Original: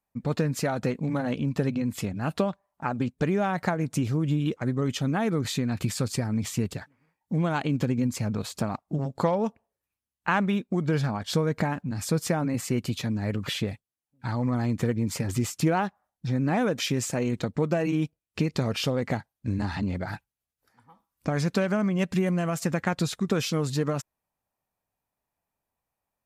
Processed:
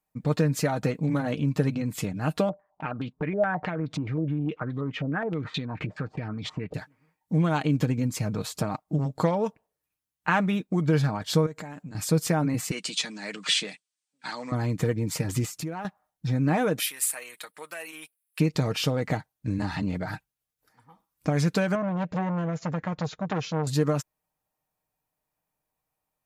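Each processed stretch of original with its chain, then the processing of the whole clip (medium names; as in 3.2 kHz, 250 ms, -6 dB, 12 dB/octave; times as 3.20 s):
2.49–6.74 s: peaking EQ 310 Hz +3 dB 2.5 oct + compression 2.5:1, threshold -32 dBFS + step-sequenced low-pass 9.5 Hz 600–3600 Hz
11.46–11.95 s: high-pass 180 Hz 6 dB/octave + peaking EQ 7.4 kHz +11.5 dB 0.26 oct + compression, threshold -37 dBFS
12.71–14.52 s: Chebyshev band-pass 180–8900 Hz, order 4 + tilt shelf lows -9.5 dB, about 1.1 kHz
15.45–15.85 s: peaking EQ 3.1 kHz -4 dB 0.25 oct + compression 3:1, threshold -36 dBFS
16.79–18.40 s: high-pass 1.4 kHz + resonant high shelf 8 kHz +8.5 dB, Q 3
21.75–23.67 s: brick-wall FIR low-pass 7.3 kHz + treble shelf 2.5 kHz -12 dB + transformer saturation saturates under 1.1 kHz
whole clip: treble shelf 11 kHz +4.5 dB; comb 6.5 ms, depth 44%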